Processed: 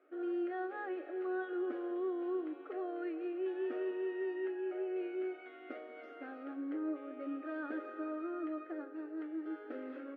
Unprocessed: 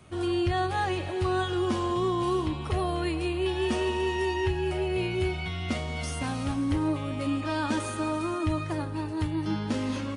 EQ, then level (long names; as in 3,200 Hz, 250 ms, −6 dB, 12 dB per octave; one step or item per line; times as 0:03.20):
linear-phase brick-wall high-pass 250 Hz
transistor ladder low-pass 1,600 Hz, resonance 50%
phaser with its sweep stopped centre 410 Hz, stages 4
+1.0 dB